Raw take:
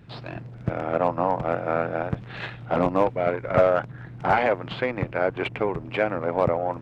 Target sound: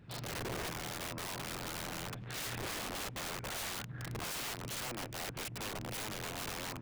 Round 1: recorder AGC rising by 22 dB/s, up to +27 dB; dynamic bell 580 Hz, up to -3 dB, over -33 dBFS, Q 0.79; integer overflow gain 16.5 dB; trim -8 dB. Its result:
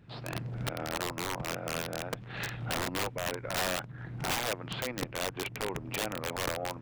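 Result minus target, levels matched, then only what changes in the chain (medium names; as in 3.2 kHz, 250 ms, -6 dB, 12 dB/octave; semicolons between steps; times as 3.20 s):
integer overflow: distortion -13 dB
change: integer overflow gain 27 dB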